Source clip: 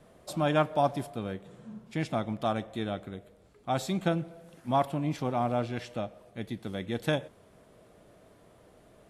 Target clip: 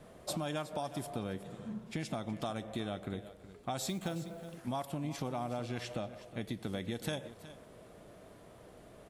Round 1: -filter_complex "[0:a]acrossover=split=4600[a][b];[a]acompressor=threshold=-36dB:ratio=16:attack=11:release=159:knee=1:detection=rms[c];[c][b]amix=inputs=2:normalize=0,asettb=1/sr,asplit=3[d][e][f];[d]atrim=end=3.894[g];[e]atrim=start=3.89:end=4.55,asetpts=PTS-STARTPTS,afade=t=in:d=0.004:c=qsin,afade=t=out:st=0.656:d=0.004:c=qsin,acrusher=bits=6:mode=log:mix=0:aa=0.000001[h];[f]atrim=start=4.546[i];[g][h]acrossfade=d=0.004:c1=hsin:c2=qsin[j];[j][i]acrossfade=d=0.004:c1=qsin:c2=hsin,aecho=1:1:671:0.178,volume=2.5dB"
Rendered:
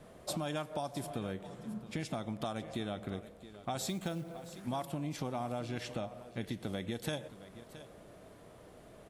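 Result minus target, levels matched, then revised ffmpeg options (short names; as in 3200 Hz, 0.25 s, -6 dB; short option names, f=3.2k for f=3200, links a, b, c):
echo 0.303 s late
-filter_complex "[0:a]acrossover=split=4600[a][b];[a]acompressor=threshold=-36dB:ratio=16:attack=11:release=159:knee=1:detection=rms[c];[c][b]amix=inputs=2:normalize=0,asettb=1/sr,asplit=3[d][e][f];[d]atrim=end=3.894[g];[e]atrim=start=3.89:end=4.55,asetpts=PTS-STARTPTS,afade=t=in:d=0.004:c=qsin,afade=t=out:st=0.656:d=0.004:c=qsin,acrusher=bits=6:mode=log:mix=0:aa=0.000001[h];[f]atrim=start=4.546[i];[g][h]acrossfade=d=0.004:c1=hsin:c2=qsin[j];[j][i]acrossfade=d=0.004:c1=qsin:c2=hsin,aecho=1:1:368:0.178,volume=2.5dB"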